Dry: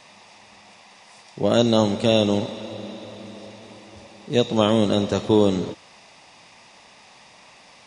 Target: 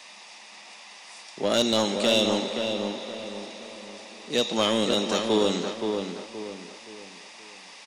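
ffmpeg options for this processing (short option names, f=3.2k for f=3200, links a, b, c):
-filter_complex "[0:a]highpass=f=190:w=0.5412,highpass=f=190:w=1.3066,tiltshelf=f=1.1k:g=-5.5,asoftclip=type=tanh:threshold=-13.5dB,asplit=2[a][b];[b]adelay=523,lowpass=f=2.4k:p=1,volume=-5dB,asplit=2[c][d];[d]adelay=523,lowpass=f=2.4k:p=1,volume=0.38,asplit=2[e][f];[f]adelay=523,lowpass=f=2.4k:p=1,volume=0.38,asplit=2[g][h];[h]adelay=523,lowpass=f=2.4k:p=1,volume=0.38,asplit=2[i][j];[j]adelay=523,lowpass=f=2.4k:p=1,volume=0.38[k];[c][e][g][i][k]amix=inputs=5:normalize=0[l];[a][l]amix=inputs=2:normalize=0"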